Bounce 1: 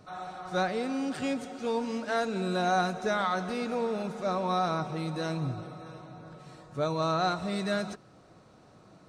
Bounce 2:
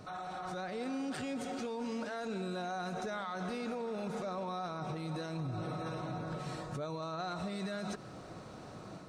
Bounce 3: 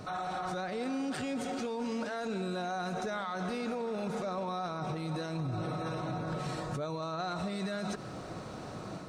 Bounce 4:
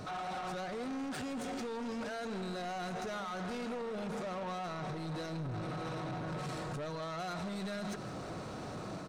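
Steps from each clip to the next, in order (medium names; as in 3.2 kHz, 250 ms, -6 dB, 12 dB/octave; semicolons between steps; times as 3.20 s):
compression, threshold -37 dBFS, peak gain reduction 14 dB; peak limiter -39 dBFS, peak gain reduction 12.5 dB; level rider gain up to 4 dB; trim +4 dB
peak limiter -34 dBFS, peak gain reduction 3 dB; trim +6 dB
saturation -38.5 dBFS, distortion -10 dB; delay 161 ms -17.5 dB; trim +2 dB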